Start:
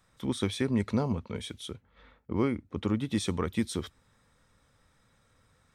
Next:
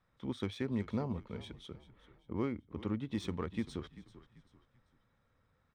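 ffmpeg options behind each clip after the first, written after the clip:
-filter_complex "[0:a]adynamicsmooth=sensitivity=4:basefreq=3.5k,asplit=4[a][b][c][d];[b]adelay=389,afreqshift=-35,volume=-16.5dB[e];[c]adelay=778,afreqshift=-70,volume=-24.9dB[f];[d]adelay=1167,afreqshift=-105,volume=-33.3dB[g];[a][e][f][g]amix=inputs=4:normalize=0,volume=-7.5dB"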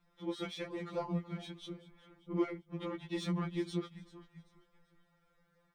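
-af "afftfilt=real='re*2.83*eq(mod(b,8),0)':imag='im*2.83*eq(mod(b,8),0)':win_size=2048:overlap=0.75,volume=5dB"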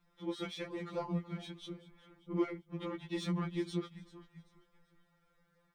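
-af "equalizer=f=630:t=o:w=0.38:g=-3"

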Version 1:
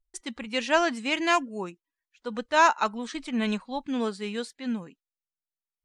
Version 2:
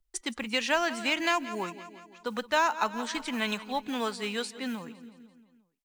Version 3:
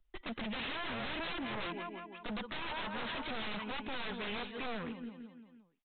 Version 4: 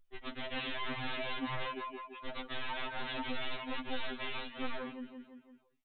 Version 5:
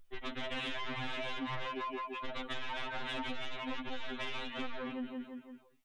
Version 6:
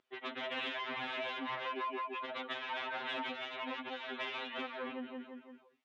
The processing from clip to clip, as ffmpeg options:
-filter_complex "[0:a]aecho=1:1:170|340|510|680|850:0.119|0.0666|0.0373|0.0209|0.0117,acrusher=bits=8:mode=log:mix=0:aa=0.000001,acrossover=split=160|650[a][b][c];[a]acompressor=threshold=-56dB:ratio=4[d];[b]acompressor=threshold=-40dB:ratio=4[e];[c]acompressor=threshold=-29dB:ratio=4[f];[d][e][f]amix=inputs=3:normalize=0,volume=4dB"
-af "alimiter=limit=-17dB:level=0:latency=1:release=257,aeval=exprs='(tanh(35.5*val(0)+0.45)-tanh(0.45))/35.5':c=same,aresample=8000,aeval=exprs='0.0106*(abs(mod(val(0)/0.0106+3,4)-2)-1)':c=same,aresample=44100,volume=5dB"
-af "afftfilt=real='re*2.45*eq(mod(b,6),0)':imag='im*2.45*eq(mod(b,6),0)':win_size=2048:overlap=0.75,volume=2.5dB"
-af "acompressor=threshold=-41dB:ratio=6,asoftclip=type=tanh:threshold=-39dB,volume=8dB"
-af "highpass=320,lowpass=3.8k,volume=1.5dB"

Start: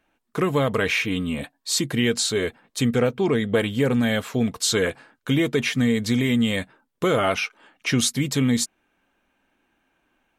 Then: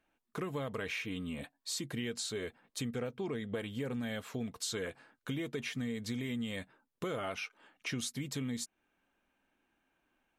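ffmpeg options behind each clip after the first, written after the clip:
-af "acompressor=threshold=-29dB:ratio=2.5,volume=-9dB"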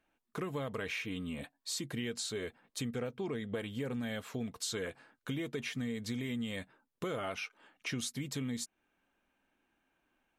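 -af anull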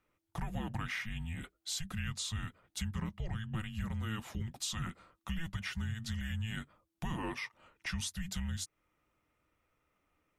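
-af "afreqshift=-330"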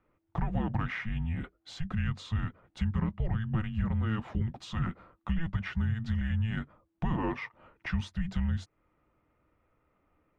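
-af "adynamicsmooth=sensitivity=0.5:basefreq=1.8k,volume=8dB"

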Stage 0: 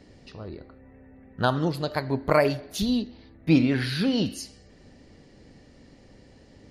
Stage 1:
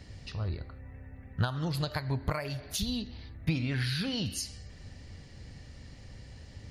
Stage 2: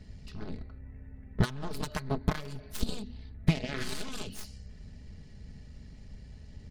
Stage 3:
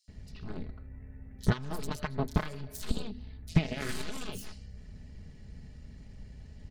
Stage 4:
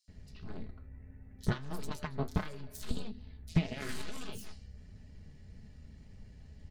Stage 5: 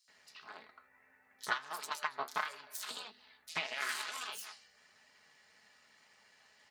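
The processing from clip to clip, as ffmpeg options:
-af "equalizer=f=300:t=o:w=2.7:g=-13.5,acompressor=threshold=-36dB:ratio=16,equalizer=f=98:t=o:w=2.2:g=10,volume=5dB"
-af "aeval=exprs='0.158*(cos(1*acos(clip(val(0)/0.158,-1,1)))-cos(1*PI/2))+0.0355*(cos(7*acos(clip(val(0)/0.158,-1,1)))-cos(7*PI/2))+0.00891*(cos(8*acos(clip(val(0)/0.158,-1,1)))-cos(8*PI/2))':c=same,lowshelf=f=300:g=10.5,aecho=1:1:4.7:0.48,volume=-3dB"
-filter_complex "[0:a]acrossover=split=4600[a][b];[a]adelay=80[c];[c][b]amix=inputs=2:normalize=0"
-af "flanger=delay=8.7:depth=6:regen=61:speed=1.6:shape=triangular"
-af "highpass=f=1.1k:t=q:w=1.5,volume=5dB"

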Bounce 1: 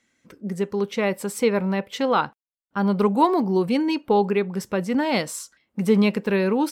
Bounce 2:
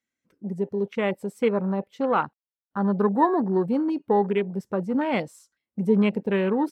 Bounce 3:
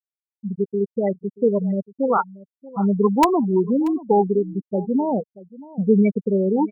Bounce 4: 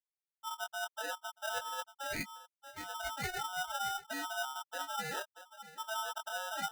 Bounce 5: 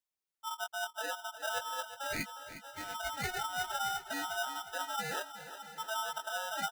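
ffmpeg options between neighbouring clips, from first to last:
-af "afwtdn=0.0316,volume=-2dB"
-filter_complex "[0:a]afftfilt=real='re*gte(hypot(re,im),0.224)':imag='im*gte(hypot(re,im),0.224)':win_size=1024:overlap=0.75,asplit=2[a][b];[b]aeval=exprs='(mod(3.35*val(0)+1,2)-1)/3.35':c=same,volume=-4dB[c];[a][c]amix=inputs=2:normalize=0,aecho=1:1:633:0.106"
-af "areverse,acompressor=threshold=-25dB:ratio=6,areverse,flanger=delay=19:depth=3.8:speed=0.54,aeval=exprs='val(0)*sgn(sin(2*PI*1100*n/s))':c=same,volume=-8.5dB"
-af "aecho=1:1:359|718|1077|1436|1795|2154:0.237|0.13|0.0717|0.0395|0.0217|0.0119,volume=1.5dB"

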